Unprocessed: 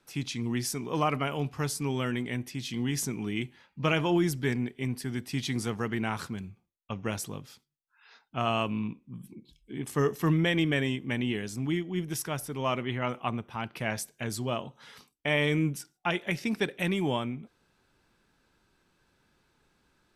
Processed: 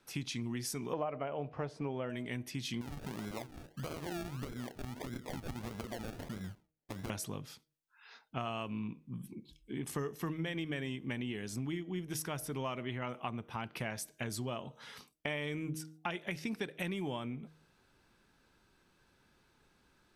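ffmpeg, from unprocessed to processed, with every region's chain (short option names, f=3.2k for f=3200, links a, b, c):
-filter_complex "[0:a]asettb=1/sr,asplit=3[a][b][c];[a]atrim=end=0.934[d];[b]atrim=start=0.93:end=2.1,asetpts=PTS-STARTPTS,afade=t=in:d=0.004:c=qsin,afade=t=out:st=1.166:d=0.004:c=qsin,lowpass=2.6k,equalizer=f=600:w=1.6:g=13.5[e];[c]atrim=start=2.096[f];[d][e]acrossfade=d=0.004:c1=hsin:c2=qsin[g];[g][f]acrossfade=d=0.004:c1=qsin:c2=hsin,asettb=1/sr,asplit=3[h][i][j];[h]atrim=end=2.814[k];[i]atrim=start=2.81:end=7.1,asetpts=PTS-STARTPTS,afade=t=in:d=0.004:c=qsin,afade=t=out:st=4.286:d=0.004:c=qsin,lowpass=f=2k:t=q:w=6.9,acompressor=threshold=-36dB:ratio=10:attack=3.2:release=140:knee=1:detection=peak,acrusher=samples=34:mix=1:aa=0.000001:lfo=1:lforange=20.4:lforate=1.6[l];[j]atrim=start=7.096[m];[k][l]acrossfade=d=0.004:c1=hsin:c2=qsin[n];[n][m]acrossfade=d=0.004:c1=qsin:c2=hsin,bandreject=f=7.5k:w=28,bandreject=f=156.6:t=h:w=4,bandreject=f=313.2:t=h:w=4,bandreject=f=469.8:t=h:w=4,bandreject=f=626.4:t=h:w=4,acompressor=threshold=-35dB:ratio=6"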